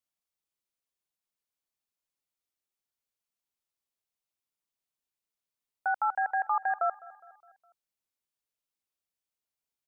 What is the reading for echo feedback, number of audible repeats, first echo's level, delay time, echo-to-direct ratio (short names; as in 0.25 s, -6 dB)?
52%, 3, -21.0 dB, 0.206 s, -19.5 dB